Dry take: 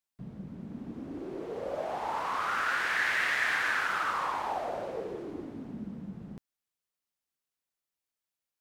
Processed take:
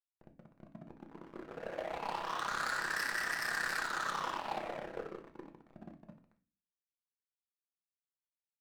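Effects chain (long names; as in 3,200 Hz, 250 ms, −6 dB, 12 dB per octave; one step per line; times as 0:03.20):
brick-wall band-pass 140–2,000 Hz
wave folding −25.5 dBFS
amplitude modulation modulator 33 Hz, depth 35%
upward compression, threshold −42 dBFS
dead-zone distortion −38 dBFS
on a send: convolution reverb RT60 0.40 s, pre-delay 5 ms, DRR 5 dB
on the sum: level +1.5 dB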